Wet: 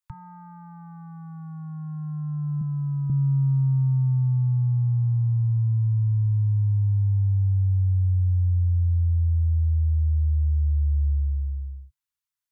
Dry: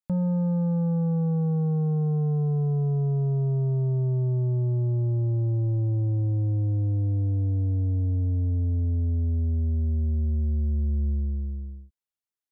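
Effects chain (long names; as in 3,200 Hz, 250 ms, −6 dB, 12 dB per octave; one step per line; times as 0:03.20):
Chebyshev band-stop filter 140–890 Hz, order 5
0:02.61–0:03.10: low shelf with overshoot 140 Hz −8 dB, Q 3
level +3.5 dB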